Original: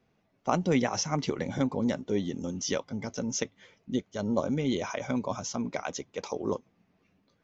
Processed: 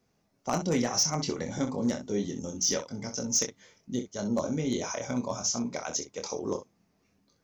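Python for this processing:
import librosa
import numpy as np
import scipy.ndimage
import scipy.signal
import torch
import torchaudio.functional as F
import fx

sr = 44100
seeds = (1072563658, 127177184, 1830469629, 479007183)

y = fx.high_shelf_res(x, sr, hz=4200.0, db=8.0, q=1.5)
y = fx.room_early_taps(y, sr, ms=(25, 64), db=(-6.0, -11.0))
y = np.clip(10.0 ** (16.5 / 20.0) * y, -1.0, 1.0) / 10.0 ** (16.5 / 20.0)
y = F.gain(torch.from_numpy(y), -2.5).numpy()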